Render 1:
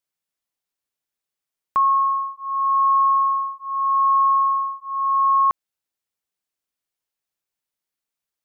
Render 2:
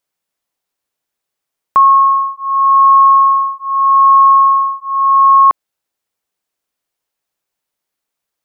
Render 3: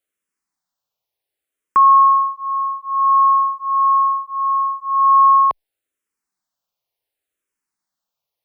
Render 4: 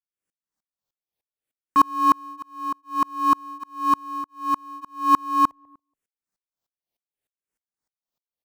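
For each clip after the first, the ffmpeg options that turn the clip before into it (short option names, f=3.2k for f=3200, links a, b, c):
-af "equalizer=f=640:w=0.5:g=4.5,volume=6.5dB"
-filter_complex "[0:a]asplit=2[a][b];[b]afreqshift=-0.69[c];[a][c]amix=inputs=2:normalize=1,volume=-1.5dB"
-filter_complex "[0:a]asplit=2[a][b];[b]acrusher=samples=32:mix=1:aa=0.000001,volume=-11dB[c];[a][c]amix=inputs=2:normalize=0,asplit=2[d][e];[e]adelay=142,lowpass=f=910:p=1,volume=-23dB,asplit=2[f][g];[g]adelay=142,lowpass=f=910:p=1,volume=0.44,asplit=2[h][i];[i]adelay=142,lowpass=f=910:p=1,volume=0.44[j];[d][f][h][j]amix=inputs=4:normalize=0,aeval=exprs='val(0)*pow(10,-35*if(lt(mod(-3.3*n/s,1),2*abs(-3.3)/1000),1-mod(-3.3*n/s,1)/(2*abs(-3.3)/1000),(mod(-3.3*n/s,1)-2*abs(-3.3)/1000)/(1-2*abs(-3.3)/1000))/20)':c=same"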